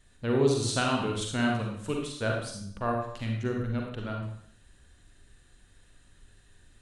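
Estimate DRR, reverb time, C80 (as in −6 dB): 0.0 dB, 0.65 s, 6.0 dB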